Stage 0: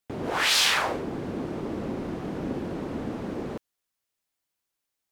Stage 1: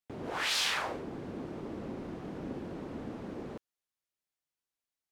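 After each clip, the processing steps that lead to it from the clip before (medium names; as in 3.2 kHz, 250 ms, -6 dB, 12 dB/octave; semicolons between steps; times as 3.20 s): treble shelf 12 kHz -6 dB; trim -8.5 dB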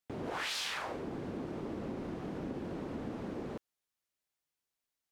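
compression 5:1, threshold -37 dBFS, peak gain reduction 9 dB; trim +2 dB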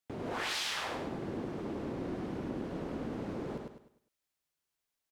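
feedback delay 102 ms, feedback 36%, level -3.5 dB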